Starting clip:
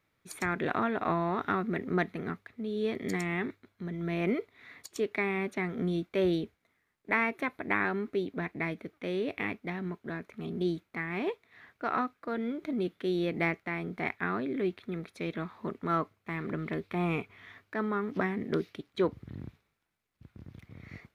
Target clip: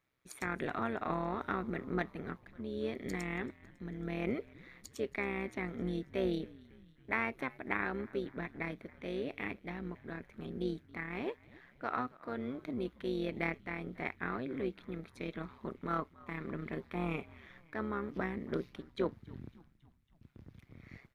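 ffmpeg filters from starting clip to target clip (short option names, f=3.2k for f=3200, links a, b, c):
-filter_complex "[0:a]asplit=6[a][b][c][d][e][f];[b]adelay=276,afreqshift=-83,volume=-22dB[g];[c]adelay=552,afreqshift=-166,volume=-26.2dB[h];[d]adelay=828,afreqshift=-249,volume=-30.3dB[i];[e]adelay=1104,afreqshift=-332,volume=-34.5dB[j];[f]adelay=1380,afreqshift=-415,volume=-38.6dB[k];[a][g][h][i][j][k]amix=inputs=6:normalize=0,tremolo=f=130:d=0.667,volume=-3dB"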